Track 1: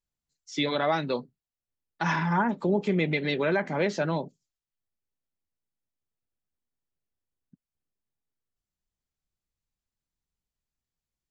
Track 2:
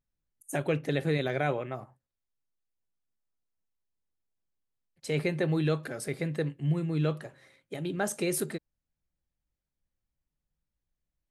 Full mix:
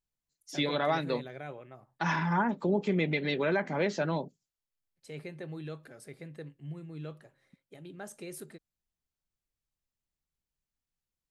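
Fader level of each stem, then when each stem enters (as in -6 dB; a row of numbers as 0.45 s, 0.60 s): -3.0 dB, -13.5 dB; 0.00 s, 0.00 s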